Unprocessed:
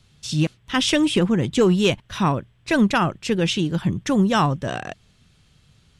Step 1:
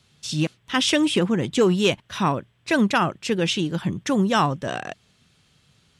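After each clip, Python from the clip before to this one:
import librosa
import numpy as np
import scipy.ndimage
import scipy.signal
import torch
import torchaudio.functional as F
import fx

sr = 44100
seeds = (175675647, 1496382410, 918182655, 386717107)

y = fx.highpass(x, sr, hz=190.0, slope=6)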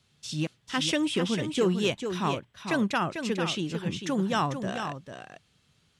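y = x + 10.0 ** (-7.5 / 20.0) * np.pad(x, (int(446 * sr / 1000.0), 0))[:len(x)]
y = y * librosa.db_to_amplitude(-7.0)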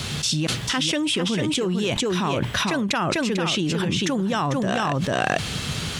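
y = fx.env_flatten(x, sr, amount_pct=100)
y = y * librosa.db_to_amplitude(-1.5)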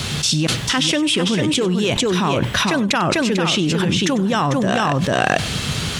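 y = x + 10.0 ** (-18.0 / 20.0) * np.pad(x, (int(96 * sr / 1000.0), 0))[:len(x)]
y = y * librosa.db_to_amplitude(5.0)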